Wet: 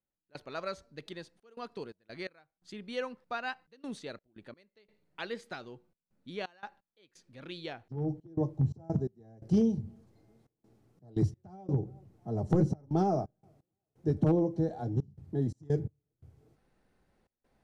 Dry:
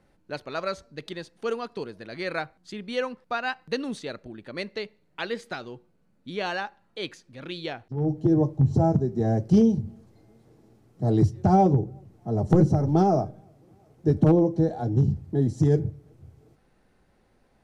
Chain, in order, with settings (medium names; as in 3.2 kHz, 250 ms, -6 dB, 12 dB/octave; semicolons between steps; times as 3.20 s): trance gate "..xxxxxx.xx.x" 86 bpm -24 dB; trim -7.5 dB